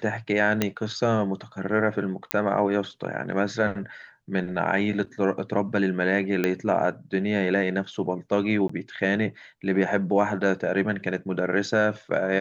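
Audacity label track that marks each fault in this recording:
0.620000	0.620000	click −7 dBFS
2.310000	2.310000	click −5 dBFS
6.440000	6.440000	click −11 dBFS
8.680000	8.690000	drop-out 14 ms

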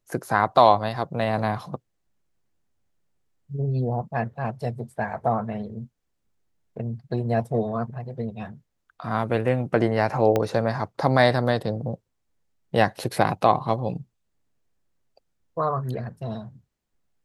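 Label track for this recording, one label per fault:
10.360000	10.360000	click −10 dBFS

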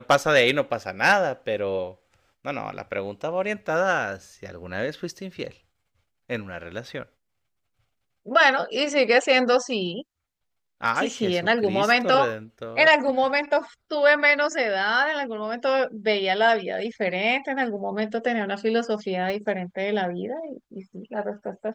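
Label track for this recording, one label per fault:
19.300000	19.300000	click −18 dBFS

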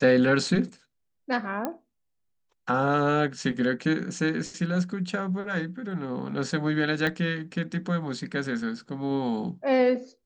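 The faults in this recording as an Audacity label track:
1.650000	1.650000	click −15 dBFS
7.070000	7.070000	click −15 dBFS

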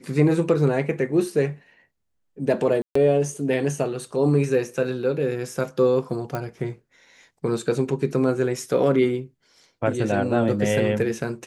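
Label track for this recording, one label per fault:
2.820000	2.950000	drop-out 134 ms
6.350000	6.350000	click −15 dBFS

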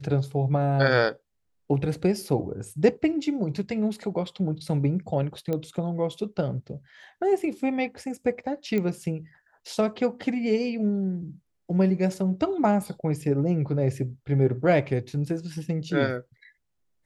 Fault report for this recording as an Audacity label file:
5.530000	5.530000	click −17 dBFS
8.780000	8.780000	click −16 dBFS

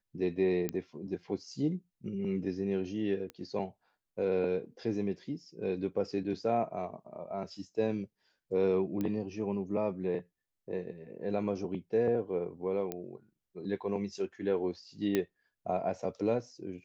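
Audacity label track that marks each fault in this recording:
0.690000	0.690000	click −18 dBFS
3.300000	3.300000	click −28 dBFS
9.010000	9.010000	click −22 dBFS
12.920000	12.920000	click −21 dBFS
15.150000	15.150000	click −16 dBFS

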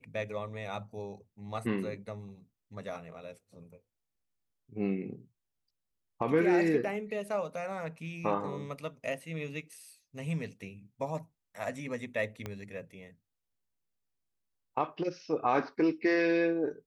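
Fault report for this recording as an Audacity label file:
12.460000	12.460000	click −23 dBFS

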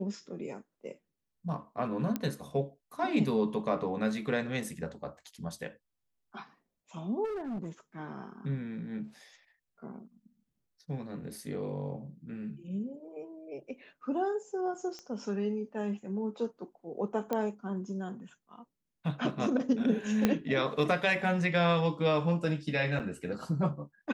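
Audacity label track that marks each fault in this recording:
2.160000	2.160000	click −18 dBFS
7.240000	7.690000	clipping −33.5 dBFS
14.990000	14.990000	click −29 dBFS
17.330000	17.330000	click −18 dBFS
20.250000	20.250000	click −11 dBFS
22.990000	23.000000	drop-out 7.9 ms

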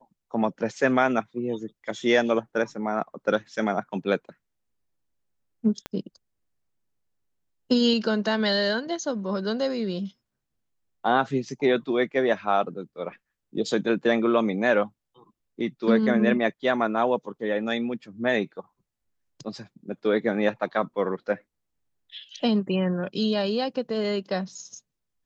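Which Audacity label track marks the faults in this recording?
5.860000	5.860000	click −17 dBFS

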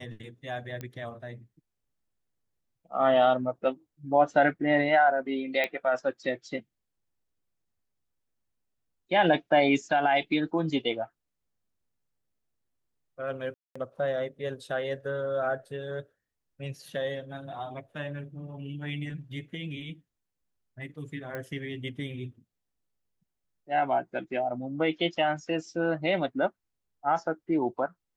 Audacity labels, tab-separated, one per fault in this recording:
0.810000	0.810000	click −23 dBFS
5.640000	5.640000	click −15 dBFS
13.540000	13.760000	drop-out 215 ms
21.350000	21.350000	click −23 dBFS

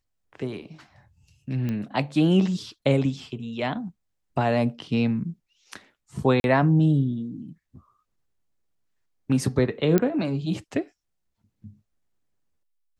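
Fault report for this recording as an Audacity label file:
1.690000	1.690000	click −18 dBFS
6.400000	6.440000	drop-out 41 ms
9.980000	9.980000	click −8 dBFS

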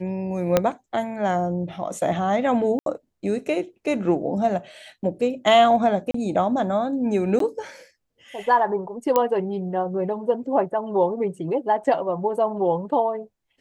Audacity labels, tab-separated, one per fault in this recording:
0.570000	0.570000	click −4 dBFS
2.790000	2.860000	drop-out 72 ms
6.110000	6.140000	drop-out 34 ms
7.390000	7.400000	drop-out 13 ms
9.160000	9.160000	click −6 dBFS
11.840000	11.850000	drop-out 5.6 ms

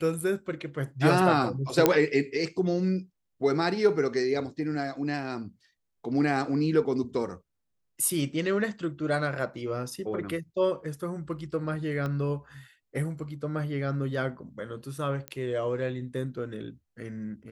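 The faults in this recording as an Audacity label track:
1.860000	1.860000	click −5 dBFS
12.060000	12.060000	click −21 dBFS
15.280000	15.280000	click −19 dBFS

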